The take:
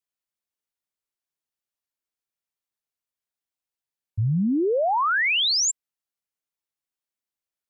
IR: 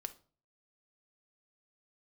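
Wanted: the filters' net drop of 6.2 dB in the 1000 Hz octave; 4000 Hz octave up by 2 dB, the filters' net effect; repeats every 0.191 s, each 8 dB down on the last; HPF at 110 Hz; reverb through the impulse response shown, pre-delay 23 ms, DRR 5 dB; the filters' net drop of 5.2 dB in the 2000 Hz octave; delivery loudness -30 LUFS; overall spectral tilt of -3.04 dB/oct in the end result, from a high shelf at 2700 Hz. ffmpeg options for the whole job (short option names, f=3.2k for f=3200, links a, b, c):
-filter_complex "[0:a]highpass=110,equalizer=f=1k:t=o:g=-6.5,equalizer=f=2k:t=o:g=-5,highshelf=f=2.7k:g=-5,equalizer=f=4k:t=o:g=8.5,aecho=1:1:191|382|573|764|955:0.398|0.159|0.0637|0.0255|0.0102,asplit=2[a][b];[1:a]atrim=start_sample=2205,adelay=23[c];[b][c]afir=irnorm=-1:irlink=0,volume=-2.5dB[d];[a][d]amix=inputs=2:normalize=0,volume=-9dB"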